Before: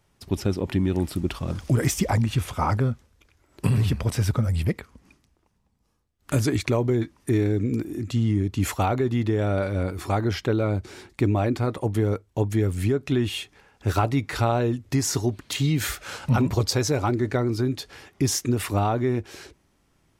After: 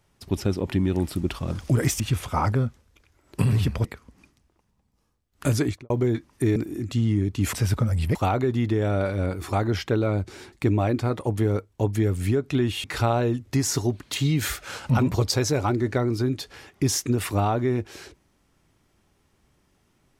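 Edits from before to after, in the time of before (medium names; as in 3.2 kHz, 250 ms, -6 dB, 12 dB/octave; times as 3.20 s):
2.00–2.25 s: delete
4.10–4.72 s: move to 8.72 s
6.47–6.77 s: studio fade out
7.43–7.75 s: delete
13.41–14.23 s: delete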